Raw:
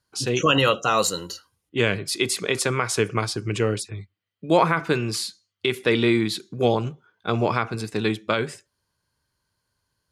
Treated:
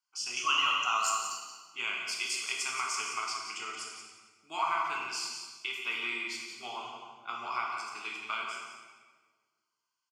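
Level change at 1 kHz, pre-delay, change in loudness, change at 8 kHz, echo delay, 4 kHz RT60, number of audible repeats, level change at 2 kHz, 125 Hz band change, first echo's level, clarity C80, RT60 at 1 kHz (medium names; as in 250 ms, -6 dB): -6.5 dB, 8 ms, -9.5 dB, -6.0 dB, 176 ms, 1.2 s, 1, -6.5 dB, under -35 dB, -8.5 dB, 2.5 dB, 1.4 s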